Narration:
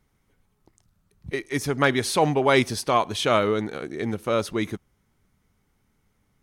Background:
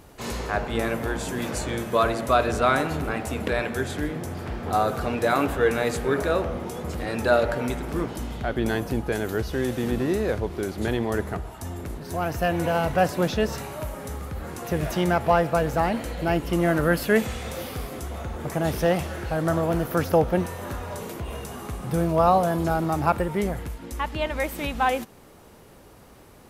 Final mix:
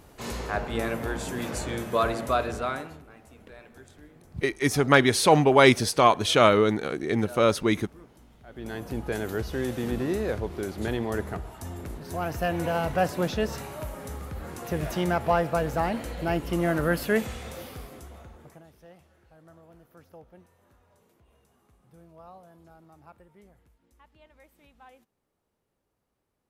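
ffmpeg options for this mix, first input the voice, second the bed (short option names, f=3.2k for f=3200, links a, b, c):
-filter_complex "[0:a]adelay=3100,volume=2.5dB[a];[1:a]volume=16.5dB,afade=t=out:st=2.17:d=0.87:silence=0.1,afade=t=in:st=8.46:d=0.68:silence=0.105925,afade=t=out:st=17.05:d=1.61:silence=0.0473151[b];[a][b]amix=inputs=2:normalize=0"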